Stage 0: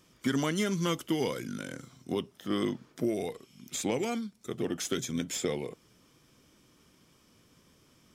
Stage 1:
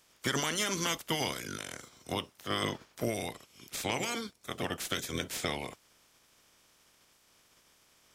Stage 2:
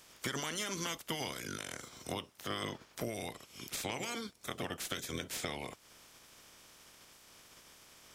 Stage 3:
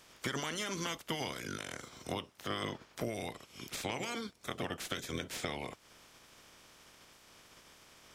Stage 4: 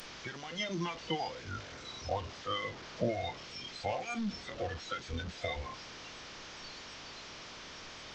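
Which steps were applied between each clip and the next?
spectral peaks clipped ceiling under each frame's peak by 20 dB; trim -2.5 dB
compression 2.5:1, threshold -48 dBFS, peak gain reduction 14 dB; trim +6.5 dB
treble shelf 6.2 kHz -7.5 dB; trim +1.5 dB
one-bit delta coder 32 kbps, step -31.5 dBFS; spectral noise reduction 17 dB; trim +7 dB

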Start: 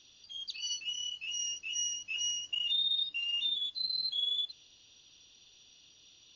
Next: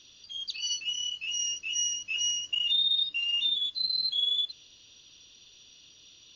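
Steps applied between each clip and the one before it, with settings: peaking EQ 790 Hz -9 dB 0.2 oct; trim +5 dB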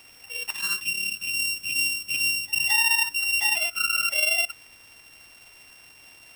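sorted samples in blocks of 16 samples; pre-echo 219 ms -22 dB; trim +5 dB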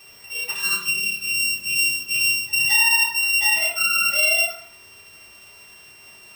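reverberation RT60 0.60 s, pre-delay 3 ms, DRR -6.5 dB; trim -3 dB

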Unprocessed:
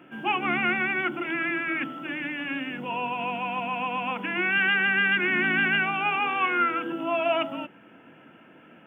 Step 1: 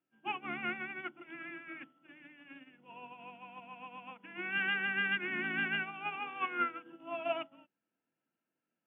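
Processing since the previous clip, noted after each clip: upward expansion 2.5:1, over -41 dBFS; trim -7.5 dB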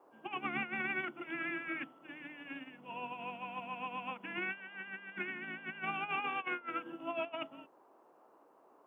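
compressor with a negative ratio -41 dBFS, ratio -0.5; band noise 270–1100 Hz -67 dBFS; trim +2.5 dB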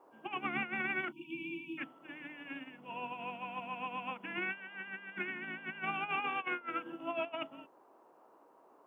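spectral selection erased 1.12–1.78 s, 360–2300 Hz; whistle 950 Hz -72 dBFS; trim +1 dB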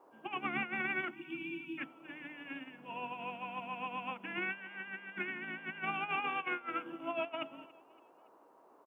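feedback delay 282 ms, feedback 47%, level -22 dB

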